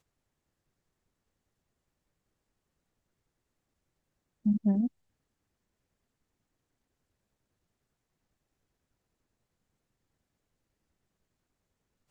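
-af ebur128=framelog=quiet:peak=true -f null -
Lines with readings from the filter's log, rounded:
Integrated loudness:
  I:         -29.8 LUFS
  Threshold: -39.8 LUFS
Loudness range:
  LRA:         4.1 LU
  Threshold: -56.1 LUFS
  LRA low:   -39.6 LUFS
  LRA high:  -35.5 LUFS
True peak:
  Peak:      -18.0 dBFS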